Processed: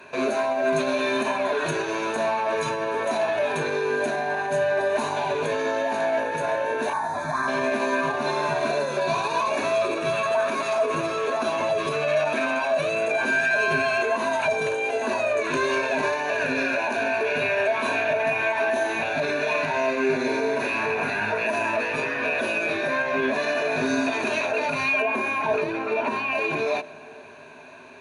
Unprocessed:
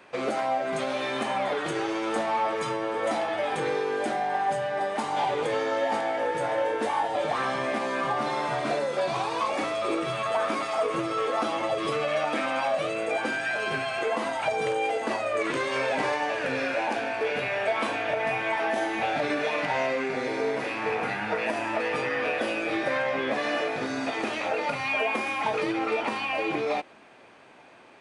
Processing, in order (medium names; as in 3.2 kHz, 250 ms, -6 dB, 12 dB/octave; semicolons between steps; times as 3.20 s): 6.93–7.48 s: static phaser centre 1.2 kHz, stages 4; 25.02–26.32 s: treble shelf 2.6 kHz -10 dB; peak limiter -22.5 dBFS, peak gain reduction 8 dB; rippled EQ curve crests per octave 1.5, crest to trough 12 dB; on a send: reverberation RT60 2.5 s, pre-delay 60 ms, DRR 19.5 dB; on the sum: trim +4.5 dB